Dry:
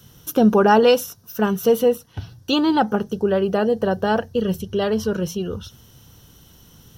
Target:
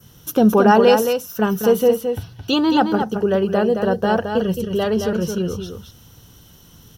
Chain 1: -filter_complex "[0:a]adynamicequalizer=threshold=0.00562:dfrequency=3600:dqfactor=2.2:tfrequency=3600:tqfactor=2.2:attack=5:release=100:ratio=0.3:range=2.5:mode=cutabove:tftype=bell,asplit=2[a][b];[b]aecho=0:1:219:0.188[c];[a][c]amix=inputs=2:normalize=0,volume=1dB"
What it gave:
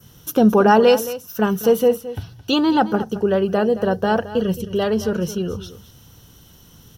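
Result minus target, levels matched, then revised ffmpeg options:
echo-to-direct -8 dB
-filter_complex "[0:a]adynamicequalizer=threshold=0.00562:dfrequency=3600:dqfactor=2.2:tfrequency=3600:tqfactor=2.2:attack=5:release=100:ratio=0.3:range=2.5:mode=cutabove:tftype=bell,asplit=2[a][b];[b]aecho=0:1:219:0.473[c];[a][c]amix=inputs=2:normalize=0,volume=1dB"

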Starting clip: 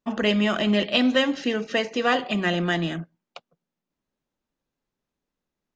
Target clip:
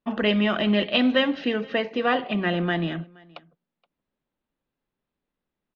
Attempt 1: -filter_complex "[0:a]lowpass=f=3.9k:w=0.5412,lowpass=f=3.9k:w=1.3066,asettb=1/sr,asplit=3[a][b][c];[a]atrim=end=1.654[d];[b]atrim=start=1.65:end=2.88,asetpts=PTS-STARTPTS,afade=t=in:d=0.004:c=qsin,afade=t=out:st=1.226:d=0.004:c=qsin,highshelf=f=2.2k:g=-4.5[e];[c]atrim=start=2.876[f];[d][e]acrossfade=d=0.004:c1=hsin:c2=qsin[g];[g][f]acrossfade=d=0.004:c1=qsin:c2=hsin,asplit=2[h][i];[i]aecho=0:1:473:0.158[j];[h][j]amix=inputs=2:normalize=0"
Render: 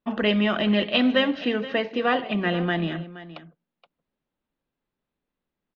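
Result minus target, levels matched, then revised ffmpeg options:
echo-to-direct +10 dB
-filter_complex "[0:a]lowpass=f=3.9k:w=0.5412,lowpass=f=3.9k:w=1.3066,asettb=1/sr,asplit=3[a][b][c];[a]atrim=end=1.654[d];[b]atrim=start=1.65:end=2.88,asetpts=PTS-STARTPTS,afade=t=in:d=0.004:c=qsin,afade=t=out:st=1.226:d=0.004:c=qsin,highshelf=f=2.2k:g=-4.5[e];[c]atrim=start=2.876[f];[d][e]acrossfade=d=0.004:c1=hsin:c2=qsin[g];[g][f]acrossfade=d=0.004:c1=qsin:c2=hsin,asplit=2[h][i];[i]aecho=0:1:473:0.0501[j];[h][j]amix=inputs=2:normalize=0"

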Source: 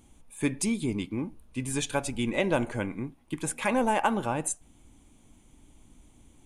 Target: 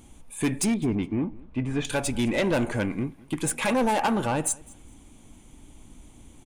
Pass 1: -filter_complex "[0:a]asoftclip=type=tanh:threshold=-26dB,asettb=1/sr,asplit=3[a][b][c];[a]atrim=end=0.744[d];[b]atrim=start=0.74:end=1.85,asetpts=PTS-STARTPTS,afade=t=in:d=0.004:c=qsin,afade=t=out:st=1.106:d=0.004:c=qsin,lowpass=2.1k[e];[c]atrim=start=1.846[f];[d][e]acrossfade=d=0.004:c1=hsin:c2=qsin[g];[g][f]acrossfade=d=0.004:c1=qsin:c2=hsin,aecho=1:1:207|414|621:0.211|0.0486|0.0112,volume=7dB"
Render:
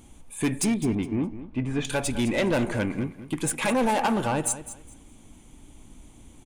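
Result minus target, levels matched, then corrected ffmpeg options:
echo-to-direct +10.5 dB
-filter_complex "[0:a]asoftclip=type=tanh:threshold=-26dB,asettb=1/sr,asplit=3[a][b][c];[a]atrim=end=0.744[d];[b]atrim=start=0.74:end=1.85,asetpts=PTS-STARTPTS,afade=t=in:d=0.004:c=qsin,afade=t=out:st=1.106:d=0.004:c=qsin,lowpass=2.1k[e];[c]atrim=start=1.846[f];[d][e]acrossfade=d=0.004:c1=hsin:c2=qsin[g];[g][f]acrossfade=d=0.004:c1=qsin:c2=hsin,aecho=1:1:207|414:0.0631|0.0145,volume=7dB"

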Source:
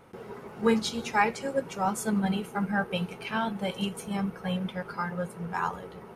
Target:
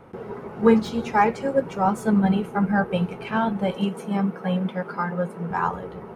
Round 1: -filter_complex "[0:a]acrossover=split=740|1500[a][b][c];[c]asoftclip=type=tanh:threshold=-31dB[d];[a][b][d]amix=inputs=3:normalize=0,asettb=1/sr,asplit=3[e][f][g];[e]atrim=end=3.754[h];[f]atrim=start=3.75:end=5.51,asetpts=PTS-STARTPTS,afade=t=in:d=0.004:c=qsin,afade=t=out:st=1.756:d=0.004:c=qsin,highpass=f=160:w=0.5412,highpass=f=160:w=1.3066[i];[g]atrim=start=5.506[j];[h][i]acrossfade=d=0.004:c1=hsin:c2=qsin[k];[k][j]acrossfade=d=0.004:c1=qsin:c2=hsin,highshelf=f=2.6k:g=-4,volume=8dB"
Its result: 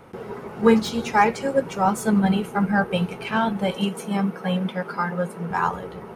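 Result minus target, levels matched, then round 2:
4000 Hz band +5.5 dB
-filter_complex "[0:a]acrossover=split=740|1500[a][b][c];[c]asoftclip=type=tanh:threshold=-31dB[d];[a][b][d]amix=inputs=3:normalize=0,asettb=1/sr,asplit=3[e][f][g];[e]atrim=end=3.754[h];[f]atrim=start=3.75:end=5.51,asetpts=PTS-STARTPTS,afade=t=in:d=0.004:c=qsin,afade=t=out:st=1.756:d=0.004:c=qsin,highpass=f=160:w=0.5412,highpass=f=160:w=1.3066[i];[g]atrim=start=5.506[j];[h][i]acrossfade=d=0.004:c1=hsin:c2=qsin[k];[k][j]acrossfade=d=0.004:c1=qsin:c2=hsin,highshelf=f=2.6k:g=-14,volume=8dB"

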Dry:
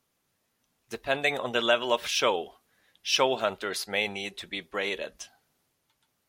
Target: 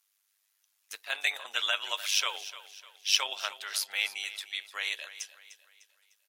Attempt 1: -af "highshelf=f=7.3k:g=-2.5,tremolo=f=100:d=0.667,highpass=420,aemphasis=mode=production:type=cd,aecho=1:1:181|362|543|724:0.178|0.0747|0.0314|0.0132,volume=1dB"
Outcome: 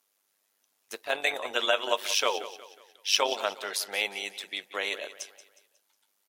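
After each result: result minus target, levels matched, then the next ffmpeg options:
500 Hz band +14.5 dB; echo 0.12 s early
-af "highshelf=f=7.3k:g=-2.5,tremolo=f=100:d=0.667,highpass=1.5k,aemphasis=mode=production:type=cd,aecho=1:1:181|362|543|724:0.178|0.0747|0.0314|0.0132,volume=1dB"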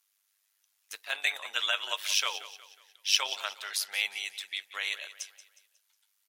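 echo 0.12 s early
-af "highshelf=f=7.3k:g=-2.5,tremolo=f=100:d=0.667,highpass=1.5k,aemphasis=mode=production:type=cd,aecho=1:1:301|602|903|1204:0.178|0.0747|0.0314|0.0132,volume=1dB"

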